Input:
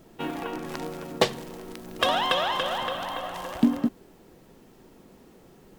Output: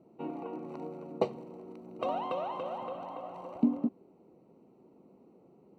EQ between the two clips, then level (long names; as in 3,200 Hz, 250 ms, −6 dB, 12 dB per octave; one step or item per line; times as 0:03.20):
moving average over 26 samples
high-pass filter 170 Hz 12 dB per octave
−4.5 dB